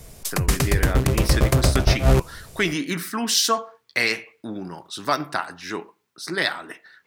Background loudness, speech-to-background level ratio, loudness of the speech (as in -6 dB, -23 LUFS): -21.0 LUFS, -4.5 dB, -25.5 LUFS